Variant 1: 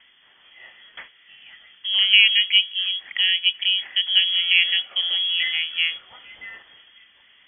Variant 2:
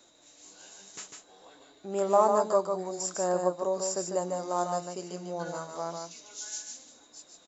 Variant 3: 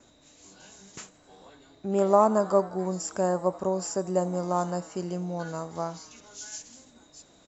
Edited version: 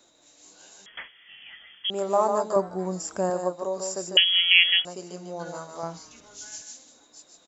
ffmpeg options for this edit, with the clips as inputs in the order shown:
-filter_complex "[0:a]asplit=2[a][b];[2:a]asplit=2[c][d];[1:a]asplit=5[e][f][g][h][i];[e]atrim=end=0.862[j];[a]atrim=start=0.858:end=1.902[k];[f]atrim=start=1.898:end=2.562[l];[c]atrim=start=2.558:end=3.302[m];[g]atrim=start=3.298:end=4.172[n];[b]atrim=start=4.168:end=4.852[o];[h]atrim=start=4.848:end=5.832[p];[d]atrim=start=5.828:end=6.622[q];[i]atrim=start=6.618[r];[j][k]acrossfade=d=0.004:c1=hsin:c2=hsin[s];[s][l]acrossfade=d=0.004:c1=hsin:c2=hsin[t];[t][m]acrossfade=d=0.004:c1=hsin:c2=hsin[u];[u][n]acrossfade=d=0.004:c1=hsin:c2=hsin[v];[v][o]acrossfade=d=0.004:c1=hsin:c2=hsin[w];[w][p]acrossfade=d=0.004:c1=hsin:c2=hsin[x];[x][q]acrossfade=d=0.004:c1=hsin:c2=hsin[y];[y][r]acrossfade=d=0.004:c1=hsin:c2=hsin"

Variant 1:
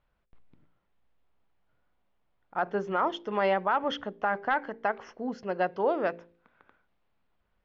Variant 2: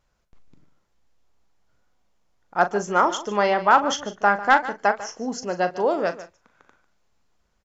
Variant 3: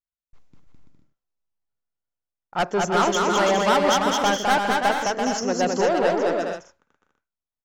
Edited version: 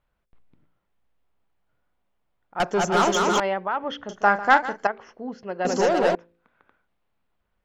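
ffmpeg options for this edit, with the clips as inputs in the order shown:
-filter_complex "[2:a]asplit=2[a][b];[0:a]asplit=4[c][d][e][f];[c]atrim=end=2.602[g];[a]atrim=start=2.598:end=3.402[h];[d]atrim=start=3.398:end=4.092[i];[1:a]atrim=start=4.088:end=4.872[j];[e]atrim=start=4.868:end=5.652[k];[b]atrim=start=5.648:end=6.152[l];[f]atrim=start=6.148[m];[g][h]acrossfade=d=0.004:c1=hsin:c2=hsin[n];[n][i]acrossfade=d=0.004:c1=hsin:c2=hsin[o];[o][j]acrossfade=d=0.004:c1=hsin:c2=hsin[p];[p][k]acrossfade=d=0.004:c1=hsin:c2=hsin[q];[q][l]acrossfade=d=0.004:c1=hsin:c2=hsin[r];[r][m]acrossfade=d=0.004:c1=hsin:c2=hsin"

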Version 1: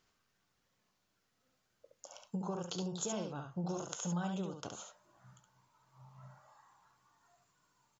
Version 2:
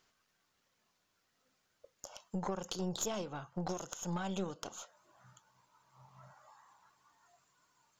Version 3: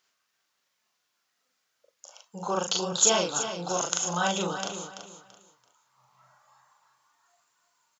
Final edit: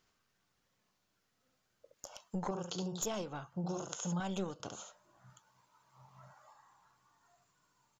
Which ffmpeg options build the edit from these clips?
-filter_complex "[1:a]asplit=4[a][b][c][d];[0:a]asplit=5[e][f][g][h][i];[e]atrim=end=1.942[j];[a]atrim=start=1.938:end=2.512[k];[f]atrim=start=2.508:end=3.022[l];[b]atrim=start=3.018:end=3.542[m];[g]atrim=start=3.538:end=4.202[n];[c]atrim=start=4.198:end=4.602[o];[h]atrim=start=4.598:end=5.302[p];[d]atrim=start=5.298:end=6.532[q];[i]atrim=start=6.528[r];[j][k]acrossfade=d=0.004:c1=hsin:c2=hsin[s];[s][l]acrossfade=d=0.004:c1=hsin:c2=hsin[t];[t][m]acrossfade=d=0.004:c1=hsin:c2=hsin[u];[u][n]acrossfade=d=0.004:c1=hsin:c2=hsin[v];[v][o]acrossfade=d=0.004:c1=hsin:c2=hsin[w];[w][p]acrossfade=d=0.004:c1=hsin:c2=hsin[x];[x][q]acrossfade=d=0.004:c1=hsin:c2=hsin[y];[y][r]acrossfade=d=0.004:c1=hsin:c2=hsin"

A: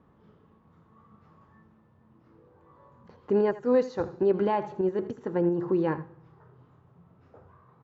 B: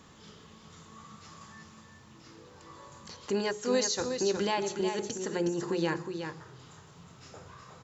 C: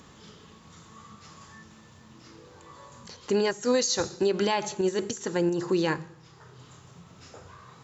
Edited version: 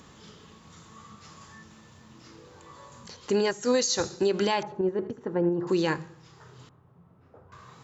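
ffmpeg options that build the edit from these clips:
-filter_complex "[0:a]asplit=2[a][b];[2:a]asplit=3[c][d][e];[c]atrim=end=4.632[f];[a]atrim=start=4.628:end=5.672[g];[d]atrim=start=5.668:end=6.692[h];[b]atrim=start=6.688:end=7.522[i];[e]atrim=start=7.518[j];[f][g]acrossfade=d=0.004:c1=hsin:c2=hsin[k];[k][h]acrossfade=d=0.004:c1=hsin:c2=hsin[l];[l][i]acrossfade=d=0.004:c1=hsin:c2=hsin[m];[m][j]acrossfade=d=0.004:c1=hsin:c2=hsin"

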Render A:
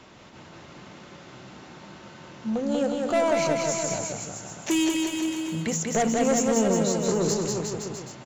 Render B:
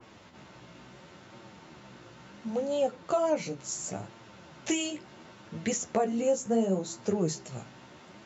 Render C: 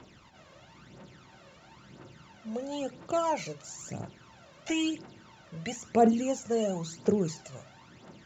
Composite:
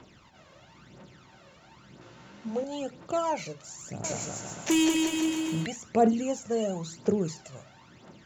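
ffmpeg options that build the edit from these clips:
-filter_complex "[2:a]asplit=3[a][b][c];[a]atrim=end=2.012[d];[1:a]atrim=start=2.008:end=2.642[e];[b]atrim=start=2.638:end=4.042[f];[0:a]atrim=start=4.038:end=5.662[g];[c]atrim=start=5.658[h];[d][e]acrossfade=d=0.004:c1=hsin:c2=hsin[i];[i][f]acrossfade=d=0.004:c1=hsin:c2=hsin[j];[j][g]acrossfade=d=0.004:c1=hsin:c2=hsin[k];[k][h]acrossfade=d=0.004:c1=hsin:c2=hsin"

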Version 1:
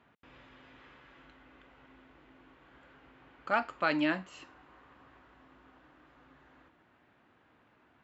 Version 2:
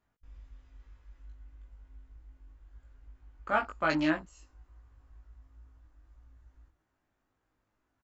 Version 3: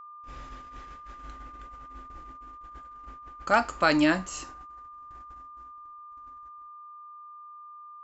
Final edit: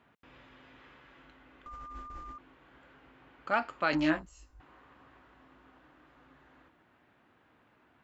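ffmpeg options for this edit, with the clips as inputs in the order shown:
-filter_complex "[0:a]asplit=3[a][b][c];[a]atrim=end=1.662[d];[2:a]atrim=start=1.658:end=2.382[e];[b]atrim=start=2.378:end=3.932[f];[1:a]atrim=start=3.928:end=4.602[g];[c]atrim=start=4.598[h];[d][e]acrossfade=d=0.004:c1=hsin:c2=hsin[i];[i][f]acrossfade=d=0.004:c1=hsin:c2=hsin[j];[j][g]acrossfade=d=0.004:c1=hsin:c2=hsin[k];[k][h]acrossfade=d=0.004:c1=hsin:c2=hsin"

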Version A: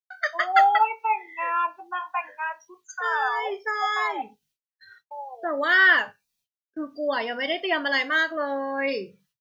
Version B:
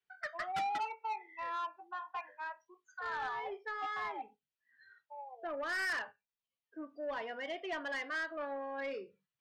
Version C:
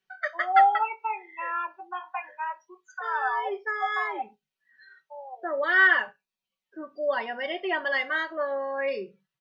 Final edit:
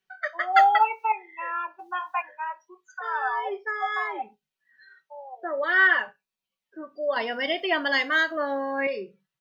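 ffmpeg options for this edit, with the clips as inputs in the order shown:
-filter_complex "[0:a]asplit=3[a][b][c];[2:a]asplit=4[d][e][f][g];[d]atrim=end=0.532[h];[a]atrim=start=0.528:end=1.122[i];[e]atrim=start=1.118:end=1.792[j];[b]atrim=start=1.788:end=2.222[k];[f]atrim=start=2.218:end=7.162[l];[c]atrim=start=7.158:end=8.872[m];[g]atrim=start=8.868[n];[h][i]acrossfade=d=0.004:c1=hsin:c2=hsin[o];[o][j]acrossfade=d=0.004:c1=hsin:c2=hsin[p];[p][k]acrossfade=d=0.004:c1=hsin:c2=hsin[q];[q][l]acrossfade=d=0.004:c1=hsin:c2=hsin[r];[r][m]acrossfade=d=0.004:c1=hsin:c2=hsin[s];[s][n]acrossfade=d=0.004:c1=hsin:c2=hsin"

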